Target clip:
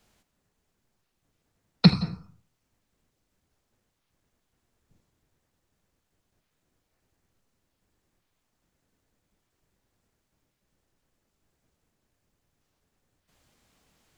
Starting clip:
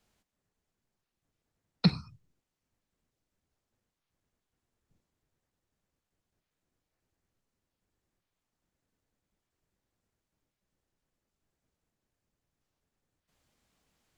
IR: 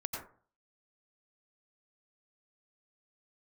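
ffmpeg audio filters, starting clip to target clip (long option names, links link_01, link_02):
-filter_complex "[0:a]asplit=2[link_01][link_02];[1:a]atrim=start_sample=2205,adelay=79[link_03];[link_02][link_03]afir=irnorm=-1:irlink=0,volume=-15dB[link_04];[link_01][link_04]amix=inputs=2:normalize=0,volume=8dB"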